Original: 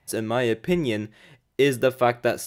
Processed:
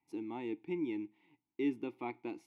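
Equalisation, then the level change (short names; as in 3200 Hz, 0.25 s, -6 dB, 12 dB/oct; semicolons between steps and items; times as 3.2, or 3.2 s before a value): vowel filter u; -3.5 dB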